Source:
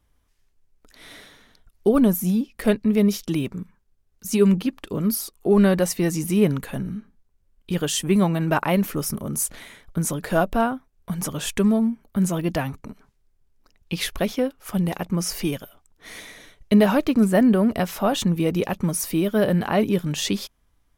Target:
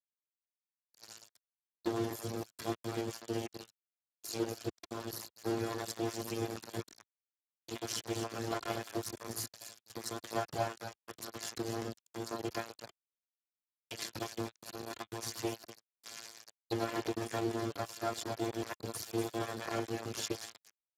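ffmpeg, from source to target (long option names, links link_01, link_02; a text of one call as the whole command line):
ffmpeg -i in.wav -filter_complex "[0:a]aeval=exprs='if(lt(val(0),0),0.447*val(0),val(0))':channel_layout=same,acompressor=threshold=-39dB:ratio=2,afftfilt=real='hypot(re,im)*cos(PI*b)':imag='0':win_size=512:overlap=0.75,tremolo=f=110:d=0.824,equalizer=frequency=250:width_type=o:width=0.38:gain=-12,aecho=1:1:245|490|735:0.355|0.0993|0.0278,asplit=2[link_01][link_02];[link_02]asetrate=88200,aresample=44100,atempo=0.5,volume=-14dB[link_03];[link_01][link_03]amix=inputs=2:normalize=0,aeval=exprs='val(0)*gte(abs(val(0)),0.0106)':channel_layout=same,volume=8dB" -ar 32000 -c:a libspeex -b:a 8k out.spx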